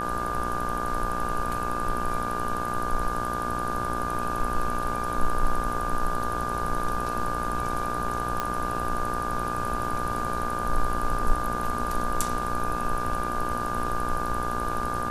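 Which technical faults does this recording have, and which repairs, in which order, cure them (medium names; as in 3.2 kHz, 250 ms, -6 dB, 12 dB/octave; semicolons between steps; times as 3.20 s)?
buzz 60 Hz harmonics 28 -33 dBFS
whine 1.2 kHz -30 dBFS
8.40 s: pop -13 dBFS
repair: de-click; de-hum 60 Hz, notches 28; band-stop 1.2 kHz, Q 30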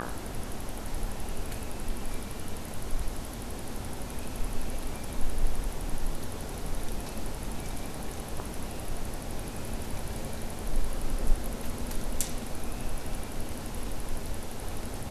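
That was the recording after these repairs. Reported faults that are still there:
nothing left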